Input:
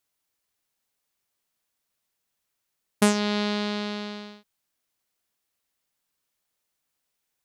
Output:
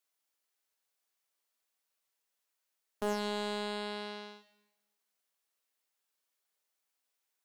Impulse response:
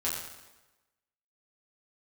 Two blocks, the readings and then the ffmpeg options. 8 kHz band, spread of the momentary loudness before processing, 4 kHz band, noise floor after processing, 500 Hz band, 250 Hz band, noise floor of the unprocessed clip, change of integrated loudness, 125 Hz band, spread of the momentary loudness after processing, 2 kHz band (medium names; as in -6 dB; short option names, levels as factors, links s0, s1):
-16.0 dB, 16 LU, -9.5 dB, -84 dBFS, -7.0 dB, -14.5 dB, -80 dBFS, -11.0 dB, under -10 dB, 11 LU, -10.0 dB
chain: -filter_complex "[0:a]highpass=370,asoftclip=type=tanh:threshold=0.0944,asplit=2[s0][s1];[1:a]atrim=start_sample=2205[s2];[s1][s2]afir=irnorm=-1:irlink=0,volume=0.376[s3];[s0][s3]amix=inputs=2:normalize=0,volume=0.422"